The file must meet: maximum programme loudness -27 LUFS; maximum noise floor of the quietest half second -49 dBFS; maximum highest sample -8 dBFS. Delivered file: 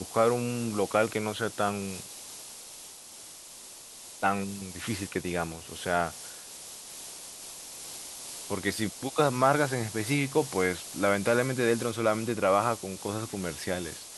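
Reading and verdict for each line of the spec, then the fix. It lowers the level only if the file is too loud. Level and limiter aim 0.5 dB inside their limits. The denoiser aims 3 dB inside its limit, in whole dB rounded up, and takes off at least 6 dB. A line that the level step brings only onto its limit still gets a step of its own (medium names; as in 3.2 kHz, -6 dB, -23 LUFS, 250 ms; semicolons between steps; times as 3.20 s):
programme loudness -29.5 LUFS: pass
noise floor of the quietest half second -47 dBFS: fail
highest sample -9.5 dBFS: pass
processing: noise reduction 6 dB, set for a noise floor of -47 dBFS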